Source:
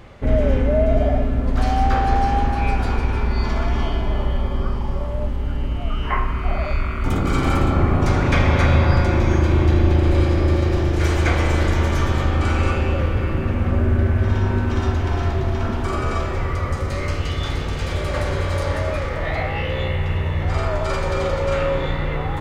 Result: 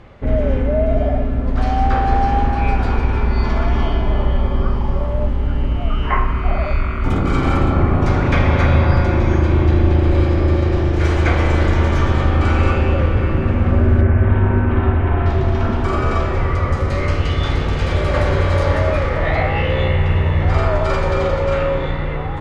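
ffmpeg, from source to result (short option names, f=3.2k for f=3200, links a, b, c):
-filter_complex "[0:a]asettb=1/sr,asplit=3[a][b][c];[a]atrim=end=14.014[d];[b]atrim=start=14.01:end=15.26,asetpts=PTS-STARTPTS,afade=t=in:d=0.004:c=qsin,afade=t=out:st=1.246:d=0.004:c=qsin,lowpass=f=2.7k:w=0.5412,lowpass=f=2.7k:w=1.3066[e];[c]atrim=start=15.256[f];[d][e]acrossfade=d=0.004:c1=hsin:c2=qsin[g];[g][f]acrossfade=d=0.004:c1=qsin:c2=hsin,aemphasis=mode=reproduction:type=50fm,dynaudnorm=f=570:g=7:m=7dB"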